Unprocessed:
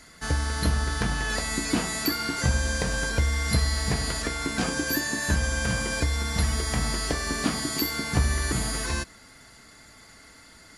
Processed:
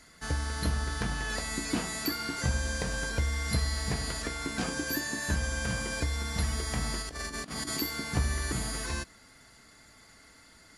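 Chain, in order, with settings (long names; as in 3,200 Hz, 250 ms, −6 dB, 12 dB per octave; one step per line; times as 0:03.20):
0:07.02–0:07.77: compressor whose output falls as the input rises −31 dBFS, ratio −0.5
level −5.5 dB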